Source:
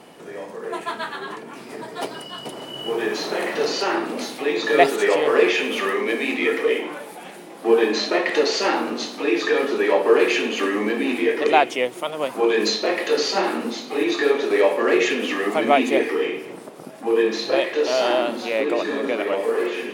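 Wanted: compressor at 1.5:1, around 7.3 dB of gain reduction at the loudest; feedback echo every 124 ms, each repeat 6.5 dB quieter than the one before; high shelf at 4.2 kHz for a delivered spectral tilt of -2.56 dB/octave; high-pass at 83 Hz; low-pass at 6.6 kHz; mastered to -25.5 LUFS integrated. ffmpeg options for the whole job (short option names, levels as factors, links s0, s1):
-af "highpass=83,lowpass=6600,highshelf=f=4200:g=7.5,acompressor=threshold=0.0282:ratio=1.5,aecho=1:1:124|248|372|496|620|744:0.473|0.222|0.105|0.0491|0.0231|0.0109,volume=0.944"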